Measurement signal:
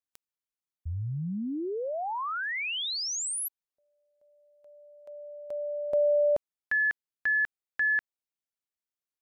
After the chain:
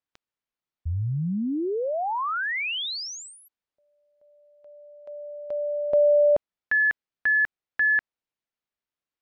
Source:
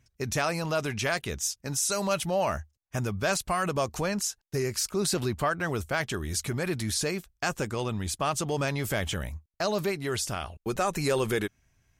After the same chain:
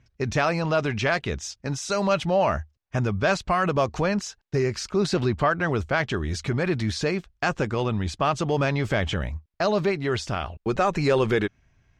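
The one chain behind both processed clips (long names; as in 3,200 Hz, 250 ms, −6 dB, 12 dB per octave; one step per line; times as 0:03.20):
high-frequency loss of the air 160 metres
level +6 dB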